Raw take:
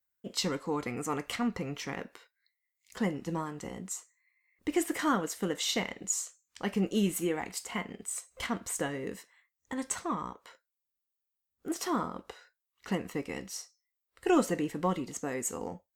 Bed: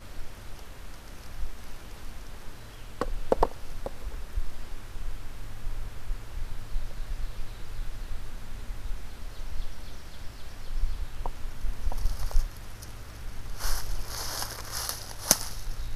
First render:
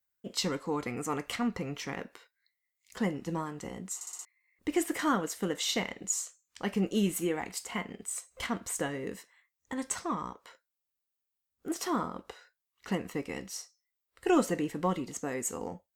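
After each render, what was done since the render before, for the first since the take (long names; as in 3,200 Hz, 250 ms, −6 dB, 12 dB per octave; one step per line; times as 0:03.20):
0:03.95: stutter in place 0.06 s, 5 plays
0:09.95–0:10.42: parametric band 5,200 Hz +8 dB 0.25 octaves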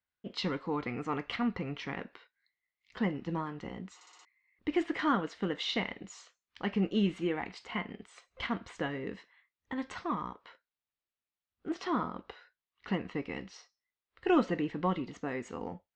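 low-pass filter 4,000 Hz 24 dB per octave
parametric band 530 Hz −3 dB 0.77 octaves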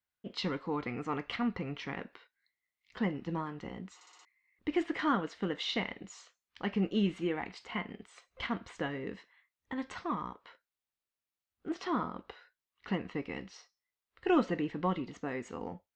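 level −1 dB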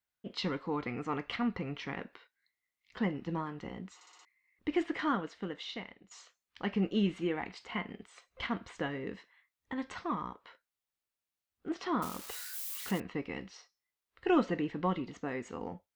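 0:04.82–0:06.11: fade out, to −16 dB
0:12.02–0:13.00: spike at every zero crossing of −32.5 dBFS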